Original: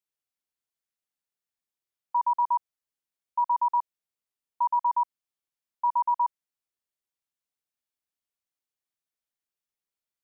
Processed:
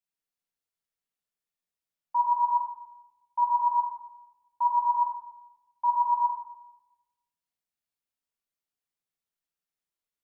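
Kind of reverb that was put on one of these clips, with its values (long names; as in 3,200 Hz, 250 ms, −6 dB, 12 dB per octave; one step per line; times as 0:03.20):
rectangular room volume 520 cubic metres, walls mixed, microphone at 1.7 metres
level −5 dB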